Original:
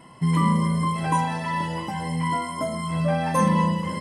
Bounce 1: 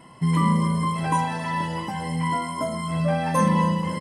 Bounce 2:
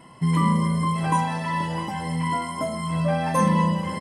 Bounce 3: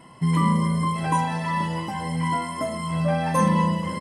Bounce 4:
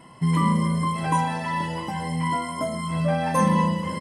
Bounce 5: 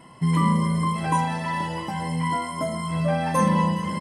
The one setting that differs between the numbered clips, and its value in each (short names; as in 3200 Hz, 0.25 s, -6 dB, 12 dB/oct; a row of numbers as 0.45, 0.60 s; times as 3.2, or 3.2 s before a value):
feedback echo, time: 0.272, 0.662, 1.112, 0.142, 0.415 s